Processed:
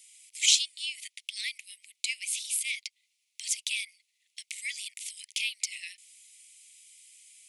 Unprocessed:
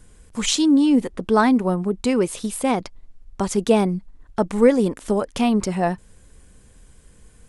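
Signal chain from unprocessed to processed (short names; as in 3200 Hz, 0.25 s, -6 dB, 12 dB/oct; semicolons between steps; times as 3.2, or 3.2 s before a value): steep high-pass 2100 Hz 96 dB/oct; in parallel at -1.5 dB: compressor, threshold -43 dBFS, peak gain reduction 23 dB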